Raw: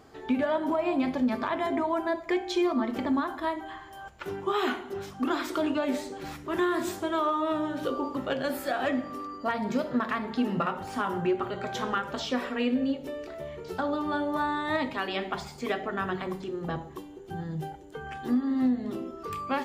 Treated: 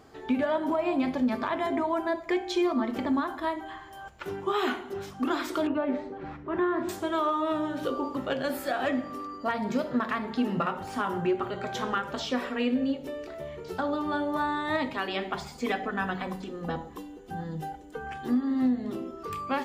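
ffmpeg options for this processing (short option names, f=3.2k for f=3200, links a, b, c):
-filter_complex "[0:a]asettb=1/sr,asplit=3[a][b][c];[a]atrim=end=5.674[d];[b]atrim=start=5.67:end=6.89,asetpts=PTS-STARTPTS,afade=t=in:d=0.004:c=qsin,afade=t=out:st=1.216:d=0.004:c=qsin,lowpass=1.7k[e];[c]atrim=start=6.886[f];[d][e]acrossfade=d=0.004:c1=hsin:c2=qsin[g];[g][f]acrossfade=d=0.004:c1=qsin:c2=hsin,asettb=1/sr,asplit=3[h][i][j];[h]atrim=end=15.514[k];[i]atrim=start=15.51:end=18.12,asetpts=PTS-STARTPTS,afade=t=in:d=0.004:c=qsin,afade=t=out:st=2.606:d=0.004:c=qsin,aecho=1:1:4:0.61,atrim=end_sample=115101[l];[j]atrim=start=18.116[m];[k][l]acrossfade=d=0.004:c1=hsin:c2=qsin[n];[n][m]acrossfade=d=0.004:c1=qsin:c2=hsin"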